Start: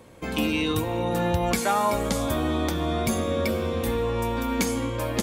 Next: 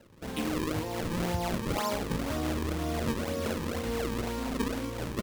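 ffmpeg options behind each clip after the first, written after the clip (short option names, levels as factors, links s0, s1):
-filter_complex "[0:a]acrusher=samples=36:mix=1:aa=0.000001:lfo=1:lforange=57.6:lforate=2,asplit=2[s0][s1];[s1]adelay=39,volume=0.266[s2];[s0][s2]amix=inputs=2:normalize=0,volume=0.447"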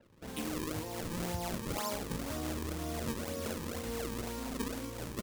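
-af "adynamicequalizer=threshold=0.002:dfrequency=4900:dqfactor=0.7:tfrequency=4900:tqfactor=0.7:attack=5:release=100:ratio=0.375:range=3.5:mode=boostabove:tftype=highshelf,volume=0.473"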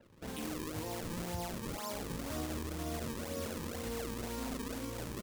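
-af "alimiter=level_in=2:limit=0.0631:level=0:latency=1:release=65,volume=0.501,volume=1.19"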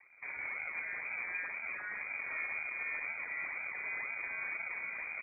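-af "acrusher=bits=3:mode=log:mix=0:aa=0.000001,lowpass=f=2100:t=q:w=0.5098,lowpass=f=2100:t=q:w=0.6013,lowpass=f=2100:t=q:w=0.9,lowpass=f=2100:t=q:w=2.563,afreqshift=-2500"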